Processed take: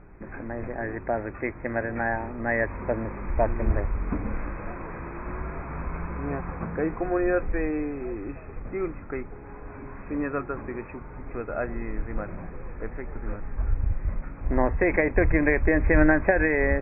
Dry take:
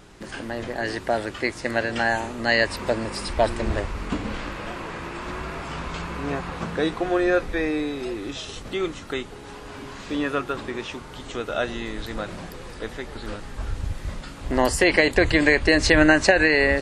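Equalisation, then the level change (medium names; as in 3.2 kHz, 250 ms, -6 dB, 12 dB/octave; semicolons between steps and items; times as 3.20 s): brick-wall FIR low-pass 2.6 kHz; distance through air 430 m; bass shelf 66 Hz +10 dB; -2.5 dB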